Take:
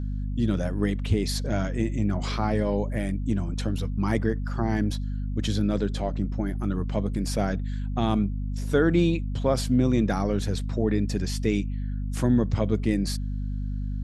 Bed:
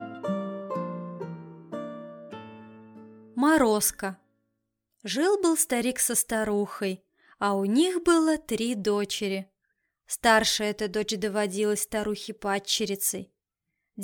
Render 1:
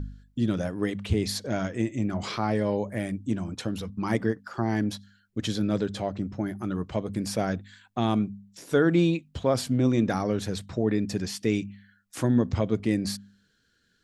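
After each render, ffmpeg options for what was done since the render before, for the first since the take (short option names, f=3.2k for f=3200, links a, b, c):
-af "bandreject=f=50:t=h:w=4,bandreject=f=100:t=h:w=4,bandreject=f=150:t=h:w=4,bandreject=f=200:t=h:w=4,bandreject=f=250:t=h:w=4"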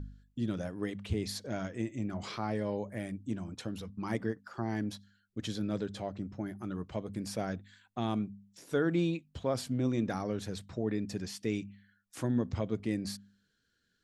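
-af "volume=-8dB"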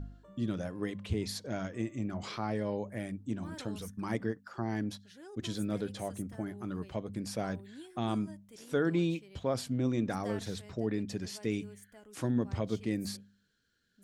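-filter_complex "[1:a]volume=-27dB[a];[0:a][a]amix=inputs=2:normalize=0"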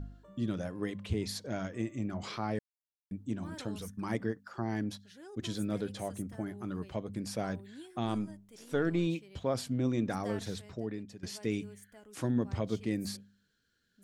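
-filter_complex "[0:a]asettb=1/sr,asplit=3[a][b][c];[a]atrim=end=8.054[d];[b]atrim=start=8.05:end=9.07,asetpts=PTS-STARTPTS,afade=t=in:d=0.004:c=qsin,afade=t=out:st=1.016:d=0.004:c=qsin,aeval=exprs='if(lt(val(0),0),0.708*val(0),val(0))':c=same[e];[c]atrim=start=9.066[f];[d][e]acrossfade=d=0.004:c1=hsin:c2=qsin[g];[g][f]acrossfade=d=0.004:c1=qsin:c2=hsin,asplit=4[h][i][j][k];[h]atrim=end=2.59,asetpts=PTS-STARTPTS,afade=t=out:st=2.586:d=0.004:c=hsin[l];[i]atrim=start=2.59:end=3.11,asetpts=PTS-STARTPTS,volume=0[m];[j]atrim=start=3.11:end=11.23,asetpts=PTS-STARTPTS,afade=t=in:d=0.004:c=hsin,afade=t=out:st=7.41:d=0.71:silence=0.149624[n];[k]atrim=start=11.23,asetpts=PTS-STARTPTS,afade=t=in:d=0.004:c=hsin:silence=0.149624[o];[l][m][n][o]concat=n=4:v=0:a=1"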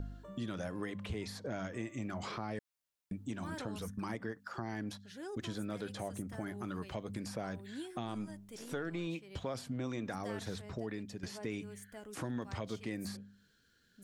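-filter_complex "[0:a]acrossover=split=700|1700[a][b][c];[a]acompressor=threshold=-44dB:ratio=4[d];[b]acompressor=threshold=-49dB:ratio=4[e];[c]acompressor=threshold=-56dB:ratio=4[f];[d][e][f]amix=inputs=3:normalize=0,asplit=2[g][h];[h]alimiter=level_in=13.5dB:limit=-24dB:level=0:latency=1:release=75,volume=-13.5dB,volume=-0.5dB[i];[g][i]amix=inputs=2:normalize=0"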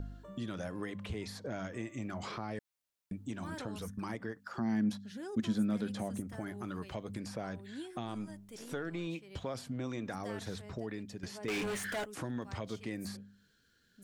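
-filter_complex "[0:a]asettb=1/sr,asplit=3[a][b][c];[a]atrim=end=4.574[d];[b]atrim=start=4.57:end=6.2,asetpts=PTS-STARTPTS,afade=t=in:d=0.004:c=qsin,afade=t=out:st=1.626:d=0.004:c=qsin,equalizer=f=220:t=o:w=0.38:g=14[e];[c]atrim=start=6.196[f];[d][e]acrossfade=d=0.004:c1=hsin:c2=qsin[g];[g][f]acrossfade=d=0.004:c1=qsin:c2=hsin,asettb=1/sr,asplit=3[h][i][j];[h]atrim=end=7.184[k];[i]atrim=start=7.18:end=7.93,asetpts=PTS-STARTPTS,afade=t=in:d=0.004:c=qsin,afade=t=out:st=0.746:d=0.004:c=qsin,highshelf=f=11k:g=-7[l];[j]atrim=start=7.926[m];[k][l]acrossfade=d=0.004:c1=hsin:c2=qsin[n];[n][m]acrossfade=d=0.004:c1=qsin:c2=hsin,asettb=1/sr,asplit=3[o][p][q];[o]atrim=end=11.484[r];[p]atrim=start=11.48:end=12.05,asetpts=PTS-STARTPTS,afade=t=in:d=0.004:c=qsin,afade=t=out:st=0.566:d=0.004:c=qsin,asplit=2[s][t];[t]highpass=f=720:p=1,volume=35dB,asoftclip=type=tanh:threshold=-28dB[u];[s][u]amix=inputs=2:normalize=0,lowpass=f=4.1k:p=1,volume=-6dB[v];[q]atrim=start=12.046[w];[r][v]acrossfade=d=0.004:c1=hsin:c2=qsin[x];[x][w]acrossfade=d=0.004:c1=qsin:c2=hsin"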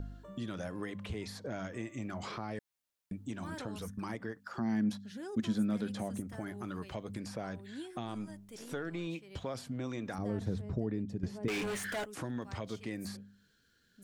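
-filter_complex "[0:a]asettb=1/sr,asplit=3[a][b][c];[a]atrim=end=10.184[d];[b]atrim=start=10.18:end=11.48,asetpts=PTS-STARTPTS,afade=t=in:d=0.004:c=qsin,afade=t=out:st=1.296:d=0.004:c=qsin,tiltshelf=f=630:g=9.5[e];[c]atrim=start=11.476[f];[d][e]acrossfade=d=0.004:c1=hsin:c2=qsin[g];[g][f]acrossfade=d=0.004:c1=qsin:c2=hsin"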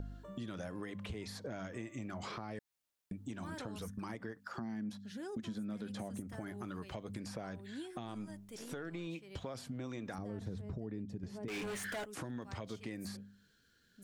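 -af "alimiter=level_in=3dB:limit=-24dB:level=0:latency=1:release=108,volume=-3dB,acompressor=threshold=-40dB:ratio=3"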